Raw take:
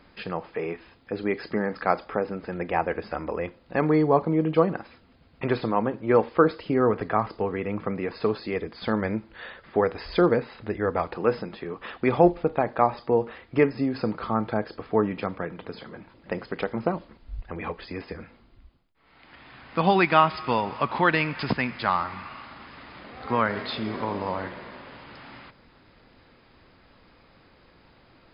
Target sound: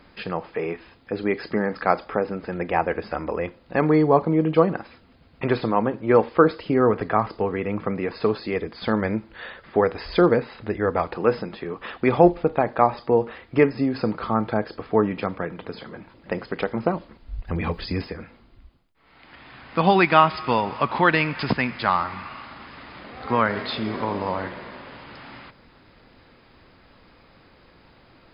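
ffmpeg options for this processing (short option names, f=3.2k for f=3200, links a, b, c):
-filter_complex "[0:a]asettb=1/sr,asplit=3[a][b][c];[a]atrim=end=17.474[d];[b]atrim=start=17.47:end=18.08,asetpts=PTS-STARTPTS,afade=t=in:d=0.004:c=qsin,afade=t=out:st=0.606:d=0.004:c=qsin,bass=f=250:g=11,treble=f=4k:g=14[e];[c]atrim=start=18.076[f];[d][e]acrossfade=d=0.004:c1=hsin:c2=qsin[g];[g][f]acrossfade=d=0.004:c1=qsin:c2=hsin,volume=3dB"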